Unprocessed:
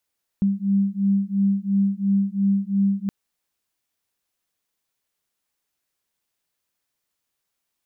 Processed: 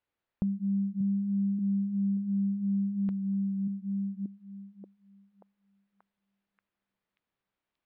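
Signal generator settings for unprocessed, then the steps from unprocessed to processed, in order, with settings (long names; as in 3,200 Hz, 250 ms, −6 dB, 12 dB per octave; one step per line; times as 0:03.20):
two tones that beat 196 Hz, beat 2.9 Hz, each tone −21 dBFS 2.67 s
on a send: echo through a band-pass that steps 583 ms, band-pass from 160 Hz, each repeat 0.7 octaves, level −4 dB
on the sum: downward compressor 2.5 to 1, threshold −31 dBFS
high-frequency loss of the air 380 metres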